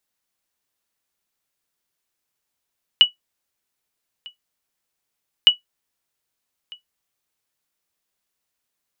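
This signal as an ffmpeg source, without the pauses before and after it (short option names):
-f lavfi -i "aevalsrc='0.794*(sin(2*PI*2940*mod(t,2.46))*exp(-6.91*mod(t,2.46)/0.13)+0.0473*sin(2*PI*2940*max(mod(t,2.46)-1.25,0))*exp(-6.91*max(mod(t,2.46)-1.25,0)/0.13))':d=4.92:s=44100"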